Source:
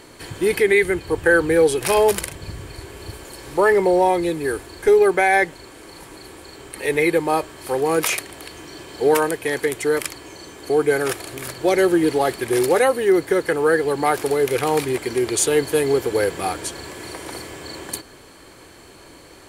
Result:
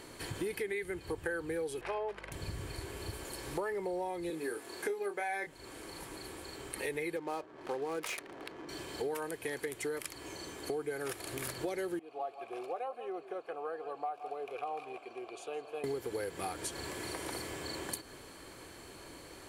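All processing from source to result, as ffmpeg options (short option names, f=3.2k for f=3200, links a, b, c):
-filter_complex "[0:a]asettb=1/sr,asplit=3[a][b][c];[a]atrim=end=1.814[d];[b]atrim=start=1.81:end=2.32,asetpts=PTS-STARTPTS,afade=t=in:d=0.004:c=qsin,afade=t=out:st=0.506:d=0.004:c=qsin,highpass=430,lowpass=2.1k,aeval=exprs='val(0)+0.00794*(sin(2*PI*50*n/s)+sin(2*PI*2*50*n/s)/2+sin(2*PI*3*50*n/s)/3+sin(2*PI*4*50*n/s)/4+sin(2*PI*5*50*n/s)/5)':c=same[e];[c]atrim=start=2.316[f];[d][e]acrossfade=d=0.004:c1=hsin:c2=qsin[g];[g][f]acrossfade=d=0.004:c1=qsin:c2=hsin,asettb=1/sr,asplit=3[h][i][j];[h]atrim=end=4.304[k];[i]atrim=start=4.3:end=5.47,asetpts=PTS-STARTPTS,afade=t=in:d=0.004:c=qsin,afade=t=out:st=1.166:d=0.004:c=qsin,highpass=230,asplit=2[l][m];[m]adelay=25,volume=-6.5dB[n];[l][n]amix=inputs=2:normalize=0,atrim=end_sample=51597[o];[j]atrim=start=5.466[p];[k][o]acrossfade=d=0.004:c1=hsin:c2=qsin[q];[q][p]acrossfade=d=0.004:c1=qsin:c2=hsin,asettb=1/sr,asplit=3[r][s][t];[r]atrim=end=7.164[u];[s]atrim=start=7.16:end=8.69,asetpts=PTS-STARTPTS,afade=t=in:d=0.004:c=qsin,afade=t=out:st=1.526:d=0.004:c=qsin,highpass=190,adynamicsmooth=sensitivity=6:basefreq=670[v];[t]atrim=start=8.686[w];[u][v]acrossfade=d=0.004:c1=hsin:c2=qsin[x];[x][w]acrossfade=d=0.004:c1=qsin:c2=hsin,asettb=1/sr,asplit=3[y][z][aa];[y]atrim=end=11.994[ab];[z]atrim=start=11.99:end=15.84,asetpts=PTS-STARTPTS,afade=t=in:d=0.004:c=qsin,afade=t=out:st=3.846:d=0.004:c=qsin,asplit=3[ac][ad][ae];[ac]bandpass=f=730:t=q:w=8,volume=0dB[af];[ad]bandpass=f=1.09k:t=q:w=8,volume=-6dB[ag];[ae]bandpass=f=2.44k:t=q:w=8,volume=-9dB[ah];[af][ag][ah]amix=inputs=3:normalize=0,aecho=1:1:164:0.178,atrim=end_sample=169785[ai];[aa]atrim=start=15.836[aj];[ab][ai]acrossfade=d=0.004:c1=hsin:c2=qsin[ak];[ak][aj]acrossfade=d=0.004:c1=qsin:c2=hsin,equalizer=f=11k:w=3.6:g=3,acompressor=threshold=-29dB:ratio=6,volume=-6dB"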